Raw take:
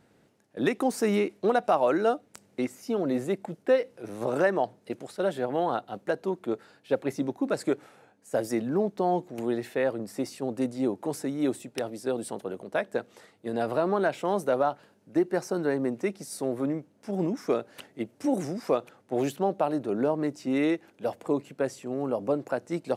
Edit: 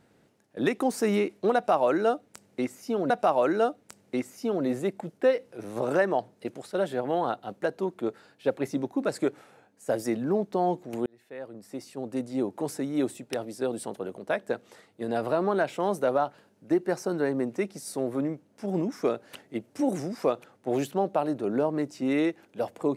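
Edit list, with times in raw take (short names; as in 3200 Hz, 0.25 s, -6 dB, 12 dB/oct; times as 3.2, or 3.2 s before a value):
1.55–3.1 loop, 2 plays
9.51–11.03 fade in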